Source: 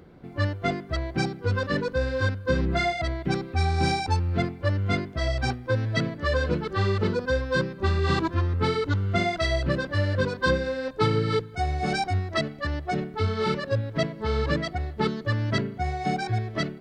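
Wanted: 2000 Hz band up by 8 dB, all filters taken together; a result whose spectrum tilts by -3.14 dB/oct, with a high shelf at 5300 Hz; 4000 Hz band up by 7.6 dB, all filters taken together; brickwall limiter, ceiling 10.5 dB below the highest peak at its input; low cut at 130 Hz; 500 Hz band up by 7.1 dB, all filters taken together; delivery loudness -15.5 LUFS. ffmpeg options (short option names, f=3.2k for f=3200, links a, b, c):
-af "highpass=130,equalizer=f=500:t=o:g=8,equalizer=f=2k:t=o:g=8,equalizer=f=4k:t=o:g=8.5,highshelf=f=5.3k:g=-4.5,volume=9.5dB,alimiter=limit=-5.5dB:level=0:latency=1"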